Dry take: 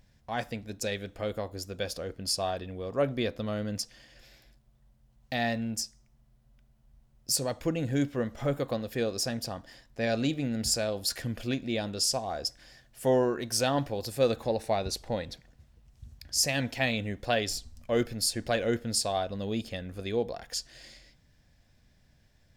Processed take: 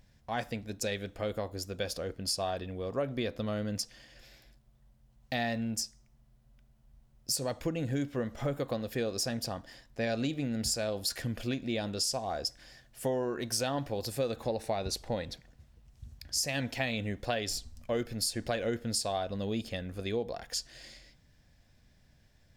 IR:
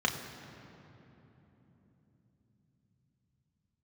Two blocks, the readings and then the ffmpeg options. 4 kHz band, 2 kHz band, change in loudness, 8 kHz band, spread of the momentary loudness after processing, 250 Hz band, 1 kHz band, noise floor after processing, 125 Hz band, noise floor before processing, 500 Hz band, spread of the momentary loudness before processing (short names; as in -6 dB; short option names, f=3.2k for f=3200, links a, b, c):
-3.0 dB, -3.5 dB, -3.5 dB, -3.0 dB, 7 LU, -3.0 dB, -3.5 dB, -64 dBFS, -2.5 dB, -64 dBFS, -4.0 dB, 9 LU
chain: -af "acompressor=threshold=-28dB:ratio=6"